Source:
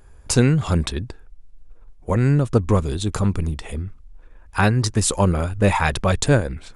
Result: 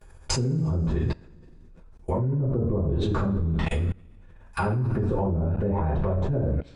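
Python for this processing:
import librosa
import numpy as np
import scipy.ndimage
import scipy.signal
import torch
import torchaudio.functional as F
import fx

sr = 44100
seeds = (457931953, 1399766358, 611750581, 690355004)

y = fx.env_lowpass_down(x, sr, base_hz=440.0, full_db=-16.0)
y = fx.rev_double_slope(y, sr, seeds[0], early_s=0.39, late_s=1.8, knee_db=-18, drr_db=-9.0)
y = fx.level_steps(y, sr, step_db=24)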